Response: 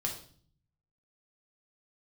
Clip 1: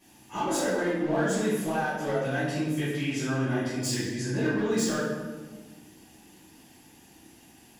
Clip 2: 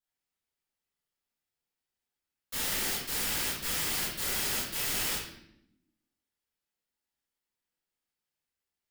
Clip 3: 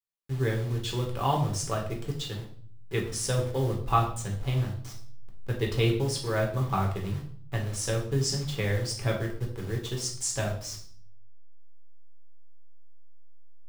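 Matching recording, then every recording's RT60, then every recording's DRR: 3; 1.4 s, 0.80 s, 0.50 s; -12.0 dB, -9.0 dB, -0.5 dB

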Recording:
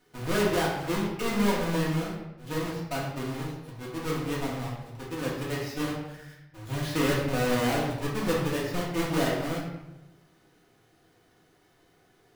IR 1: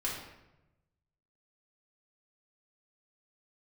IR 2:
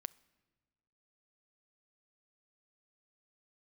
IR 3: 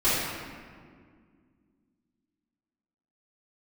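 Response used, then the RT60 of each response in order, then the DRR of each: 1; 0.95 s, 1.5 s, 2.0 s; -5.5 dB, 20.0 dB, -15.0 dB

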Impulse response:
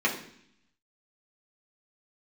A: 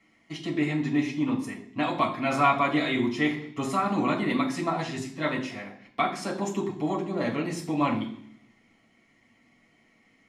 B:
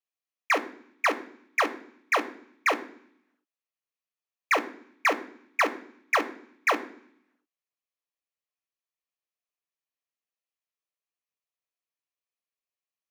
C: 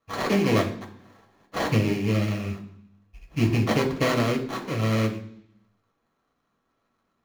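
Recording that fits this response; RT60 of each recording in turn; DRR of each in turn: A; 0.65 s, 0.65 s, 0.65 s; -4.5 dB, 8.5 dB, 0.5 dB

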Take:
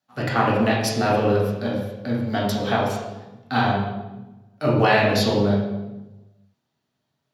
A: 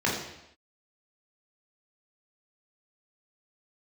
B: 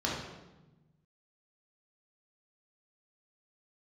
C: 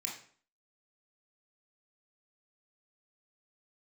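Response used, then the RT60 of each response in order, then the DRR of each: B; no single decay rate, 1.1 s, 0.50 s; -4.5 dB, -4.5 dB, -2.0 dB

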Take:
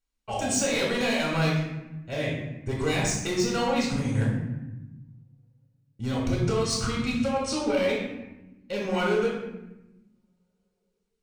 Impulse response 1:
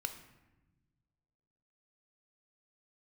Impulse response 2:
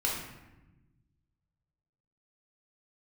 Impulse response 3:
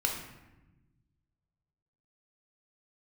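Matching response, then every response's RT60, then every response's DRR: 2; 1.1 s, 1.0 s, 1.0 s; 6.5 dB, -4.0 dB, 0.0 dB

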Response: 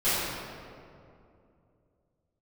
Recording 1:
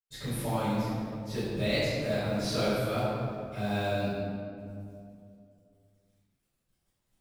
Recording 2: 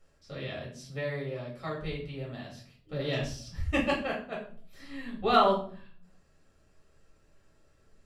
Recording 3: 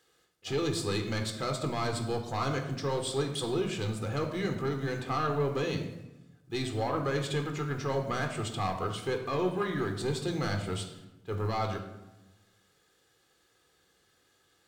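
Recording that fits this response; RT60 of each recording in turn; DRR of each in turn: 1; 2.6 s, 0.50 s, 1.0 s; -16.5 dB, -4.5 dB, 4.0 dB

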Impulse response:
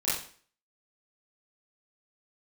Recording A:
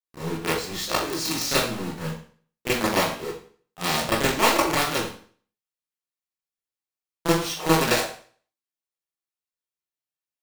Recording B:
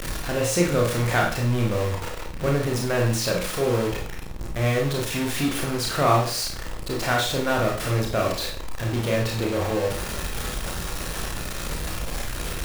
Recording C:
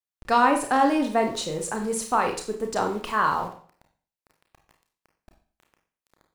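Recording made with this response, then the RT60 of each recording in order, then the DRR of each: A; 0.45 s, 0.45 s, 0.45 s; -11.5 dB, -1.5 dB, 3.5 dB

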